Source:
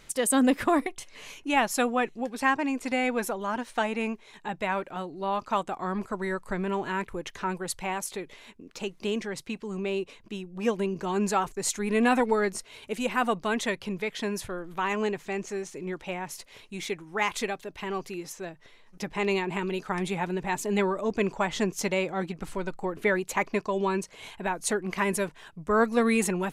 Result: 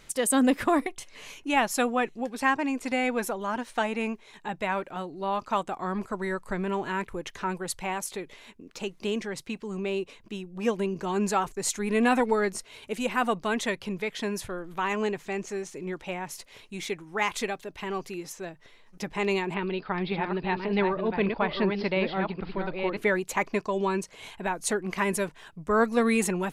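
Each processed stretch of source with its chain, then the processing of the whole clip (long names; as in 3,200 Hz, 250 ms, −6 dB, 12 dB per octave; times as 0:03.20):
0:19.54–0:22.97: delay that plays each chunk backwards 573 ms, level −5.5 dB + Butterworth low-pass 4,900 Hz 96 dB per octave
whole clip: no processing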